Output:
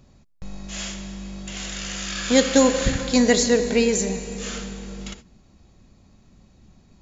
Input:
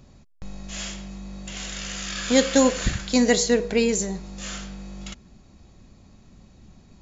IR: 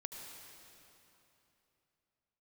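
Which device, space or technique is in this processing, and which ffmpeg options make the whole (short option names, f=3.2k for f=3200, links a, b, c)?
keyed gated reverb: -filter_complex "[0:a]asplit=3[a][b][c];[1:a]atrim=start_sample=2205[d];[b][d]afir=irnorm=-1:irlink=0[e];[c]apad=whole_len=309488[f];[e][f]sidechaingate=range=-25dB:threshold=-42dB:ratio=16:detection=peak,volume=1dB[g];[a][g]amix=inputs=2:normalize=0,volume=-3dB"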